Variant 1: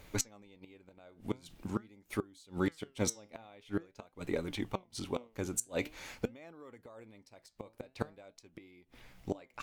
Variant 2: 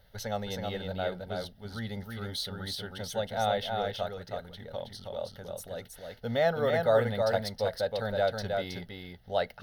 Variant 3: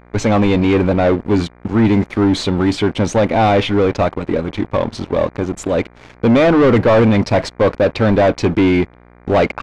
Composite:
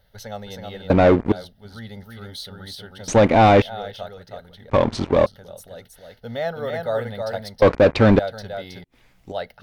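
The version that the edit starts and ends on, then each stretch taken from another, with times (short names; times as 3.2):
2
0.9–1.32 from 3
3.08–3.62 from 3
4.7–5.26 from 3
7.62–8.19 from 3
8.84–9.32 from 1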